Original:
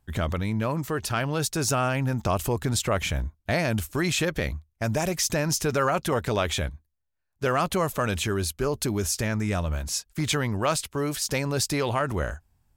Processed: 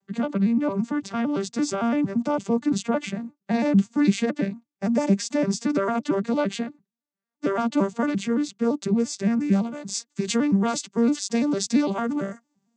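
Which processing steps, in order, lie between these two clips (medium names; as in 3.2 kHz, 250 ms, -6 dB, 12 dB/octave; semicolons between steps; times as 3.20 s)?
vocoder on a broken chord minor triad, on G3, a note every 113 ms; tone controls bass +6 dB, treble +7 dB, from 9.51 s treble +14 dB; trim +1.5 dB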